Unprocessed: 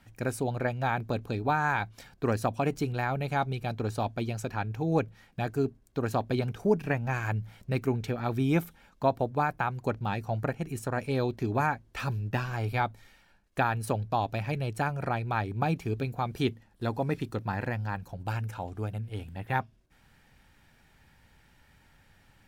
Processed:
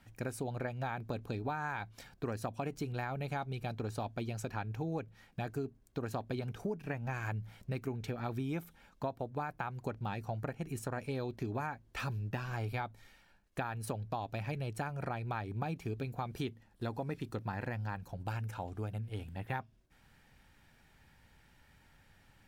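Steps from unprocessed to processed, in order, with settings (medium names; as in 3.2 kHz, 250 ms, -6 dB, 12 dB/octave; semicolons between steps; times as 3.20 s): compression, threshold -31 dBFS, peak gain reduction 12 dB; trim -3 dB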